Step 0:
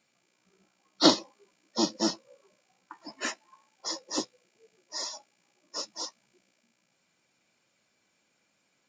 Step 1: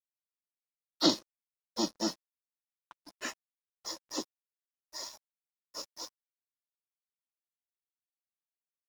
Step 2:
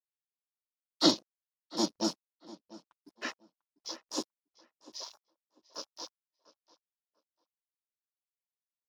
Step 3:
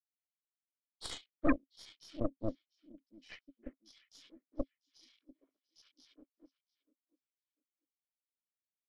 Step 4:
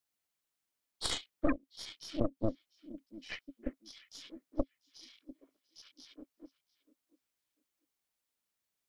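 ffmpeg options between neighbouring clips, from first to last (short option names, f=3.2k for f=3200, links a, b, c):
-filter_complex "[0:a]acrossover=split=190|430|2800[a][b][c][d];[c]alimiter=limit=-19dB:level=0:latency=1:release=314[e];[a][b][e][d]amix=inputs=4:normalize=0,aeval=exprs='sgn(val(0))*max(abs(val(0))-0.00668,0)':c=same,volume=-4dB"
-filter_complex "[0:a]afwtdn=0.00501,asplit=2[a][b];[b]adelay=695,lowpass=f=3.1k:p=1,volume=-18.5dB,asplit=2[c][d];[d]adelay=695,lowpass=f=3.1k:p=1,volume=0.22[e];[a][c][e]amix=inputs=3:normalize=0,volume=1.5dB"
-filter_complex "[0:a]asplit=3[a][b][c];[a]bandpass=f=270:t=q:w=8,volume=0dB[d];[b]bandpass=f=2.29k:t=q:w=8,volume=-6dB[e];[c]bandpass=f=3.01k:t=q:w=8,volume=-9dB[f];[d][e][f]amix=inputs=3:normalize=0,acrossover=split=1100|3700[g][h][i];[h]adelay=70[j];[g]adelay=410[k];[k][j][i]amix=inputs=3:normalize=0,aeval=exprs='0.0794*(cos(1*acos(clip(val(0)/0.0794,-1,1)))-cos(1*PI/2))+0.0251*(cos(8*acos(clip(val(0)/0.0794,-1,1)))-cos(8*PI/2))':c=same,volume=2.5dB"
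-af "acompressor=threshold=-34dB:ratio=12,volume=9dB"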